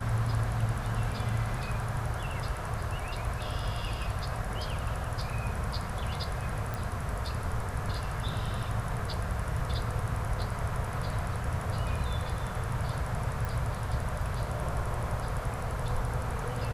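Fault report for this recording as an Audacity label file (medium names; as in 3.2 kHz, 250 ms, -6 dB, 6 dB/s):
6.740000	6.740000	pop
13.450000	13.450000	pop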